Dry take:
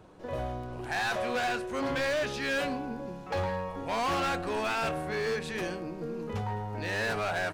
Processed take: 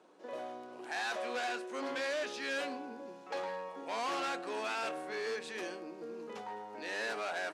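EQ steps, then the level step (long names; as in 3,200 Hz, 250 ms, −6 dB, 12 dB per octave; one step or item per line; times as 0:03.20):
high-pass filter 260 Hz 24 dB per octave
low-pass filter 8,400 Hz 12 dB per octave
high-shelf EQ 5,700 Hz +6 dB
−6.5 dB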